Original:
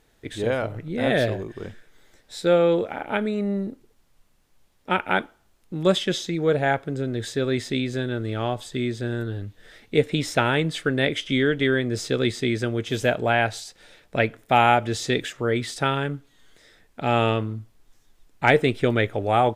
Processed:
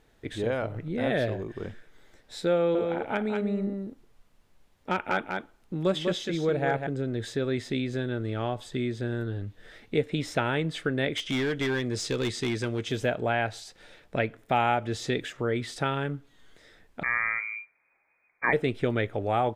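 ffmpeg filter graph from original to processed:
ffmpeg -i in.wav -filter_complex "[0:a]asettb=1/sr,asplit=3[link_01][link_02][link_03];[link_01]atrim=end=2.554[link_04];[link_02]atrim=start=2.55:end=6.87,asetpts=PTS-STARTPTS,afade=type=in:duration=0.004:curve=qsin,afade=type=out:start_time=4.316:duration=0.004:curve=qsin,volume=10.5dB,asoftclip=hard,volume=-10.5dB,aecho=1:1:197:0.501,atrim=end_sample=190512[link_05];[link_03]atrim=start=6.866[link_06];[link_04][link_05]acrossfade=duration=0.004:curve1=hsin:curve2=qsin[link_07];[link_07][link_06]acrossfade=duration=0.004:curve1=qsin:curve2=hsin,asettb=1/sr,asplit=3[link_08][link_09][link_10];[link_08]atrim=end=11.154[link_11];[link_09]atrim=start=11.15:end=12.92,asetpts=PTS-STARTPTS,afade=type=in:duration=0.004:curve=qsin,afade=type=out:start_time=1.766:duration=0.004:curve=qsin,lowpass=6900,aemphasis=mode=production:type=75fm,volume=19dB,asoftclip=hard,volume=-19dB[link_12];[link_10]atrim=start=12.916[link_13];[link_11][link_12]acrossfade=duration=0.004:curve1=hsin:curve2=qsin[link_14];[link_14][link_13]acrossfade=duration=0.004:curve1=qsin:curve2=hsin,asettb=1/sr,asplit=3[link_15][link_16][link_17];[link_15]atrim=end=17.034[link_18];[link_16]atrim=start=17.03:end=18.53,asetpts=PTS-STARTPTS,afade=type=in:duration=0.004:curve=qsin,afade=type=out:start_time=1.496:duration=0.004:curve=qsin,highpass=frequency=120:poles=1,lowpass=frequency=2100:width_type=q:width=0.5098,lowpass=frequency=2100:width_type=q:width=0.6013,lowpass=frequency=2100:width_type=q:width=0.9,lowpass=frequency=2100:width_type=q:width=2.563,afreqshift=-2500[link_19];[link_17]atrim=start=18.526[link_20];[link_18][link_19]acrossfade=duration=0.004:curve1=hsin:curve2=qsin[link_21];[link_21][link_20]acrossfade=duration=0.004:curve1=qsin:curve2=hsin,highshelf=frequency=4300:gain=-7.5,acompressor=threshold=-32dB:ratio=1.5" out.wav

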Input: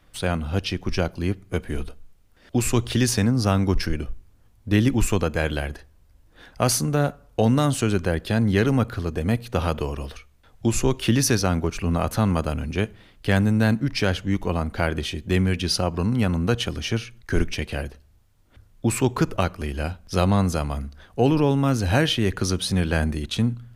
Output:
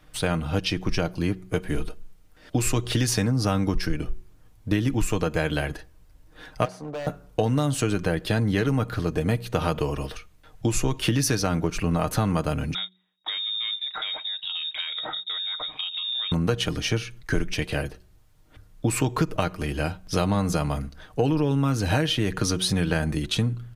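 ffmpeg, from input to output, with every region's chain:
ffmpeg -i in.wav -filter_complex "[0:a]asettb=1/sr,asplit=3[link_01][link_02][link_03];[link_01]atrim=end=6.654[link_04];[link_02]atrim=start=6.65:end=7.07,asetpts=PTS-STARTPTS,afade=type=in:duration=0.004:curve=qsin,afade=type=out:start_time=0.416:duration=0.004:curve=qsin,bandpass=frequency=640:width_type=q:width=2.2,volume=33.5dB,asoftclip=hard,volume=-33.5dB[link_05];[link_03]atrim=start=7.066[link_06];[link_04][link_05]acrossfade=duration=0.004:curve1=hsin:curve2=qsin[link_07];[link_07][link_06]acrossfade=duration=0.004:curve1=qsin:curve2=hsin,asettb=1/sr,asplit=3[link_08][link_09][link_10];[link_08]atrim=end=12.744[link_11];[link_09]atrim=start=12.74:end=16.32,asetpts=PTS-STARTPTS,afade=type=in:duration=0.004:curve=qsin,afade=type=out:start_time=3.576:duration=0.004:curve=qsin,lowpass=frequency=3200:width_type=q:width=0.5098,lowpass=frequency=3200:width_type=q:width=0.6013,lowpass=frequency=3200:width_type=q:width=0.9,lowpass=frequency=3200:width_type=q:width=2.563,afreqshift=-3800,acompressor=threshold=-30dB:ratio=8:attack=3.2:release=140:knee=1:detection=peak,agate=range=-26dB:threshold=-42dB:ratio=16:release=100:detection=peak[link_12];[link_10]atrim=start=16.316[link_13];[link_11][link_12]acrossfade=duration=0.004:curve1=hsin:curve2=qsin[link_14];[link_14][link_13]acrossfade=duration=0.004:curve1=qsin:curve2=hsin,aecho=1:1:6.5:0.45,bandreject=frequency=184.7:width_type=h:width=4,bandreject=frequency=369.4:width_type=h:width=4,acompressor=threshold=-21dB:ratio=6,volume=2dB" out.wav

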